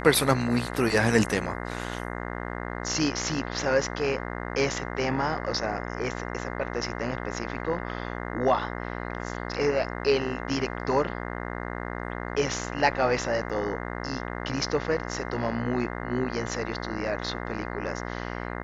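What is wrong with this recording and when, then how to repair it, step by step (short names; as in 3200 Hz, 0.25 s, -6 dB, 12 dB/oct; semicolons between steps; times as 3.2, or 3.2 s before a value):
buzz 60 Hz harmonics 35 -34 dBFS
13.49–13.5 gap 6.6 ms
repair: de-hum 60 Hz, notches 35; interpolate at 13.49, 6.6 ms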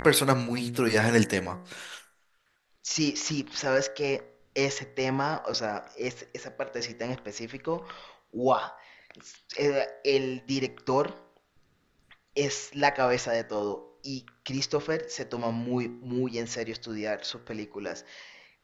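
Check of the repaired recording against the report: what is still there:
none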